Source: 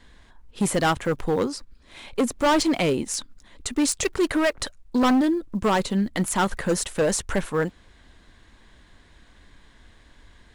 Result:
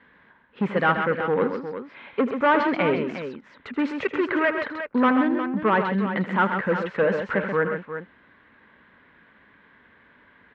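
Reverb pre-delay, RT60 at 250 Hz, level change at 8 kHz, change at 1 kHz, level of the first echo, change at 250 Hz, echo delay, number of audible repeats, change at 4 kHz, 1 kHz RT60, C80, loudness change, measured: no reverb audible, no reverb audible, below −35 dB, +2.5 dB, −14.0 dB, −1.0 dB, 80 ms, 3, −8.5 dB, no reverb audible, no reverb audible, 0.0 dB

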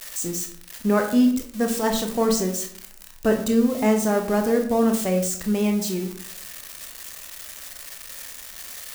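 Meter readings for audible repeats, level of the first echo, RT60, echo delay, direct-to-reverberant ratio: no echo audible, no echo audible, 0.60 s, no echo audible, 3.5 dB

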